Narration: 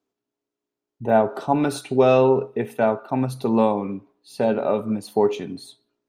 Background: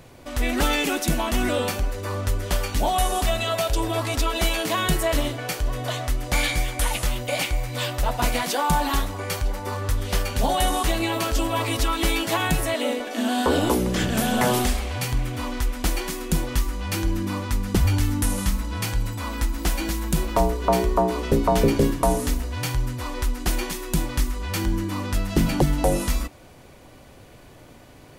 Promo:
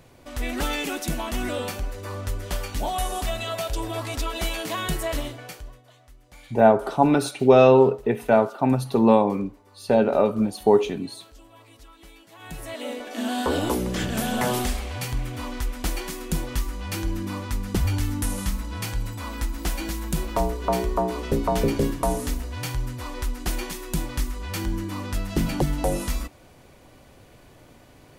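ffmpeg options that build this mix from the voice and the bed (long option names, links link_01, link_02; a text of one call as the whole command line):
ffmpeg -i stem1.wav -i stem2.wav -filter_complex "[0:a]adelay=5500,volume=2dB[link_01];[1:a]volume=18dB,afade=type=out:start_time=5.13:duration=0.69:silence=0.0841395,afade=type=in:start_time=12.35:duration=0.89:silence=0.0707946[link_02];[link_01][link_02]amix=inputs=2:normalize=0" out.wav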